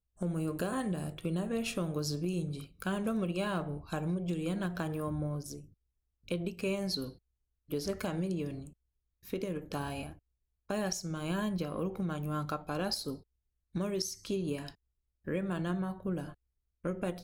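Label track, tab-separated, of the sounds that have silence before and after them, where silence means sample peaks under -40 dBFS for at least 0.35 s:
6.280000	7.100000	sound
7.710000	8.670000	sound
9.280000	10.110000	sound
10.700000	13.150000	sound
13.750000	14.690000	sound
15.270000	16.320000	sound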